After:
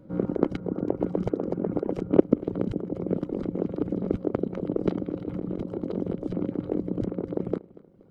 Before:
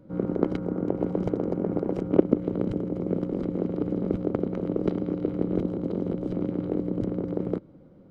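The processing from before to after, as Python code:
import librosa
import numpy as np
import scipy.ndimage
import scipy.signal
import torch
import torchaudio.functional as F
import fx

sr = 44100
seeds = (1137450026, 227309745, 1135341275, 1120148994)

p1 = fx.dereverb_blind(x, sr, rt60_s=1.1)
p2 = fx.over_compress(p1, sr, threshold_db=-32.0, ratio=-1.0, at=(4.89, 5.94))
p3 = p2 + fx.echo_feedback(p2, sr, ms=237, feedback_pct=43, wet_db=-21.0, dry=0)
y = p3 * 10.0 ** (1.5 / 20.0)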